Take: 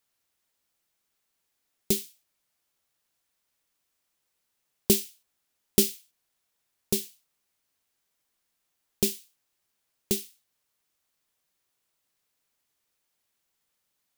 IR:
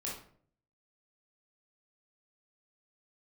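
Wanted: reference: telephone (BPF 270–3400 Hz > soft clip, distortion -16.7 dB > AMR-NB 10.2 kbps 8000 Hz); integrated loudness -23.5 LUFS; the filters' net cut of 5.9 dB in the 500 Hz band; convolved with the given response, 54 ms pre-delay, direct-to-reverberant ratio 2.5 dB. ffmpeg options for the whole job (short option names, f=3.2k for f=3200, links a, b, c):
-filter_complex "[0:a]equalizer=f=500:t=o:g=-7.5,asplit=2[a][b];[1:a]atrim=start_sample=2205,adelay=54[c];[b][c]afir=irnorm=-1:irlink=0,volume=-3.5dB[d];[a][d]amix=inputs=2:normalize=0,highpass=270,lowpass=3.4k,asoftclip=threshold=-21dB,volume=16.5dB" -ar 8000 -c:a libopencore_amrnb -b:a 10200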